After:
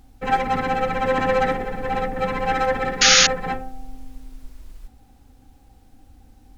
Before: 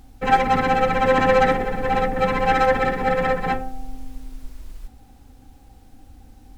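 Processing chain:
sound drawn into the spectrogram noise, 0:03.01–0:03.27, 1,200–6,900 Hz −10 dBFS
level −3.5 dB

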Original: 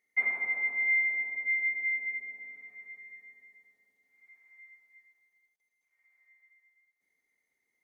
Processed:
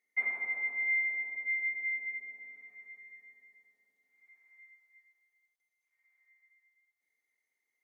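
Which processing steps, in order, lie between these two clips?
high-pass filter 150 Hz 6 dB per octave, from 0:04.63 560 Hz
level −3.5 dB

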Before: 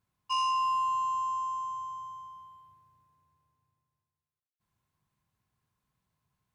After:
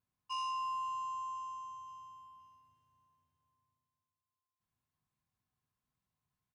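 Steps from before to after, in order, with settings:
tuned comb filter 250 Hz, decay 0.42 s, harmonics odd, mix 70%
repeating echo 523 ms, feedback 47%, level −20 dB
level +1 dB

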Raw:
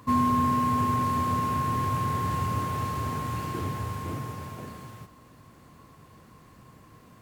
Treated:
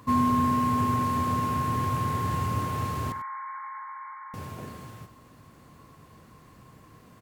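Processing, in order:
0:03.12–0:04.34: linear-phase brick-wall band-pass 810–2,300 Hz
on a send: single-tap delay 97 ms −14.5 dB

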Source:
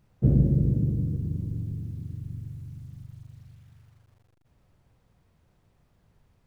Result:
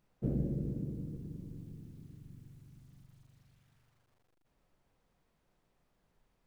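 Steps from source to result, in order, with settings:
parametric band 91 Hz −15 dB 1.4 octaves
level −6 dB

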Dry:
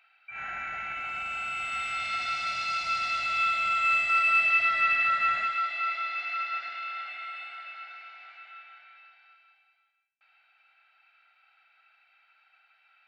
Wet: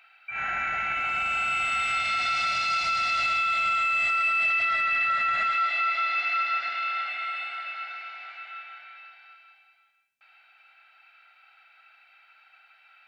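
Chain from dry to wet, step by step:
brickwall limiter −25 dBFS, peak gain reduction 10.5 dB
level +7 dB

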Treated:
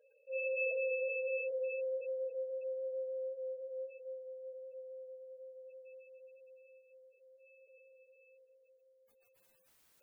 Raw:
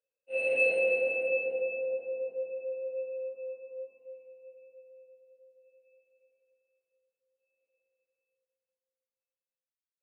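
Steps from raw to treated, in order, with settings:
parametric band 4,500 Hz −3 dB 2.3 octaves
gate on every frequency bin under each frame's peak −15 dB strong
0:01.50–0:02.35: low-shelf EQ 210 Hz +8 dB
envelope flattener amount 50%
level −9 dB

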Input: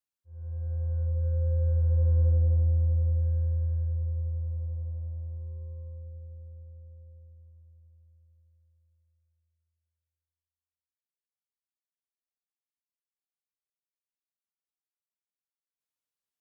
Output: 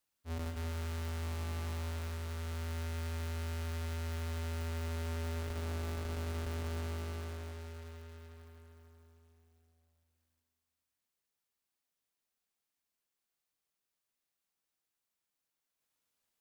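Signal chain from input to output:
each half-wave held at its own peak
dynamic equaliser 410 Hz, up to −5 dB, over −34 dBFS, Q 0.72
compressor whose output falls as the input rises −32 dBFS, ratio −1
brickwall limiter −36 dBFS, peak gain reduction 39 dB
convolution reverb RT60 1.9 s, pre-delay 54 ms, DRR 4 dB

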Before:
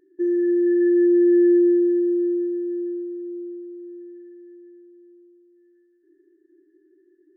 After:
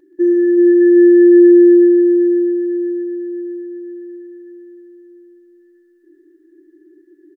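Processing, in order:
comb filter 3.6 ms, depth 49%
on a send: echo machine with several playback heads 127 ms, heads first and third, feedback 74%, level −9 dB
on the sum: level +8 dB

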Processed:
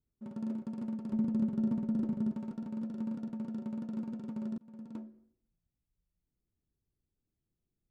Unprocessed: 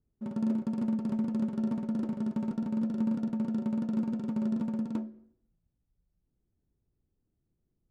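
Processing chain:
0:01.13–0:02.36: low-shelf EQ 360 Hz +10 dB
0:04.58–0:05.08: fade in
level −7.5 dB

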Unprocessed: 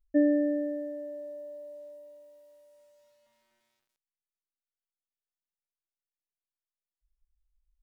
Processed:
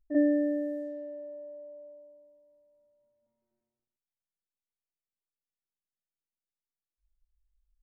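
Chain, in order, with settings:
low-pass that shuts in the quiet parts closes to 370 Hz, open at −30 dBFS
backwards echo 42 ms −10.5 dB

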